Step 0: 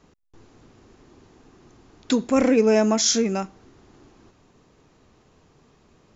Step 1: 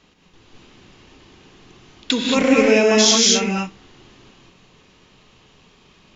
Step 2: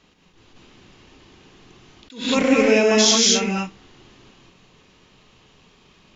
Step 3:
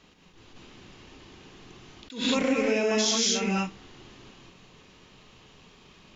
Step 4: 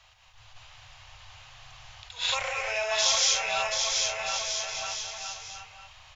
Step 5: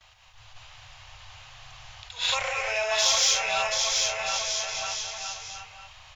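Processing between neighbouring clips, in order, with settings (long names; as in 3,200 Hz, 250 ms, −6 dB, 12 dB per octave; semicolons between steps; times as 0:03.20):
parametric band 3,100 Hz +13.5 dB 1.4 octaves; reverb whose tail is shaped and stops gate 250 ms rising, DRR −2 dB; level −1.5 dB
level that may rise only so fast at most 140 dB per second; level −1.5 dB
downward compressor 6 to 1, threshold −22 dBFS, peak gain reduction 10.5 dB
Chebyshev band-stop filter 110–670 Hz, order 3; on a send: bouncing-ball delay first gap 730 ms, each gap 0.75×, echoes 5; on the sum: level +2 dB
noise gate with hold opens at −51 dBFS; in parallel at −10 dB: soft clipping −22.5 dBFS, distortion −13 dB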